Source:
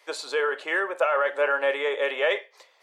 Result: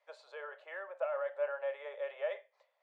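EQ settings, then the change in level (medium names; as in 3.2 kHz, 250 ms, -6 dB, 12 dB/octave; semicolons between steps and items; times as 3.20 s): ladder band-pass 640 Hz, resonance 70%; differentiator; +12.0 dB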